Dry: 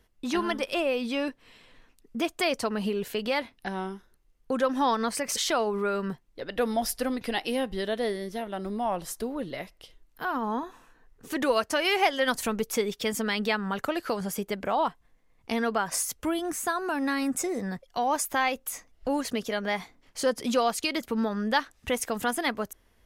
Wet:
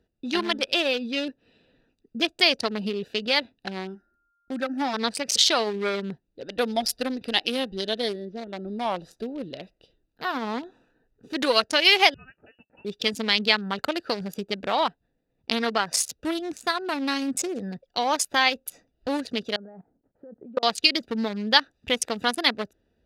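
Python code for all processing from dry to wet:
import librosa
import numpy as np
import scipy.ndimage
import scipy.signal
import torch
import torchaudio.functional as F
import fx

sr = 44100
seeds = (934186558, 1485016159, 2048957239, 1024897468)

y = fx.gate_hold(x, sr, open_db=-53.0, close_db=-63.0, hold_ms=71.0, range_db=-21, attack_ms=1.4, release_ms=100.0, at=(3.94, 4.93), fade=0.02)
y = fx.fixed_phaser(y, sr, hz=700.0, stages=8, at=(3.94, 4.93), fade=0.02)
y = fx.dmg_tone(y, sr, hz=1400.0, level_db=-61.0, at=(3.94, 4.93), fade=0.02)
y = fx.chain(y, sr, fx.gaussian_blur(sigma=1.7),
    fx.high_shelf(hz=2500.0, db=-6.5), at=(8.25, 8.68))
y = fx.chain(y, sr, fx.differentiator(),
    fx.freq_invert(carrier_hz=3100), at=(12.14, 12.85))
y = fx.chain(y, sr, fx.lowpass(hz=1300.0, slope=24),
    fx.level_steps(step_db=21), at=(19.56, 20.63))
y = fx.wiener(y, sr, points=41)
y = fx.highpass(y, sr, hz=140.0, slope=6)
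y = fx.peak_eq(y, sr, hz=4100.0, db=14.5, octaves=1.6)
y = y * librosa.db_to_amplitude(2.0)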